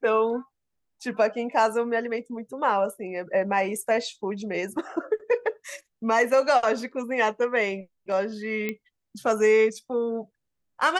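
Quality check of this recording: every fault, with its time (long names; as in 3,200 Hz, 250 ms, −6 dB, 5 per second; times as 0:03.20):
0:08.69: click −15 dBFS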